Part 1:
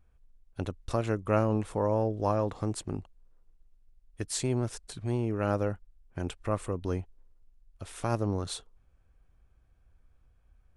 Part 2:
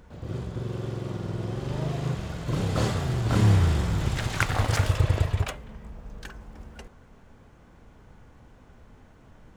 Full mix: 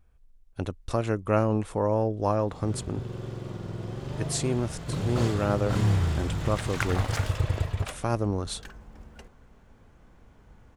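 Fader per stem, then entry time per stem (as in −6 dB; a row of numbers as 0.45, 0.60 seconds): +2.5, −4.0 decibels; 0.00, 2.40 seconds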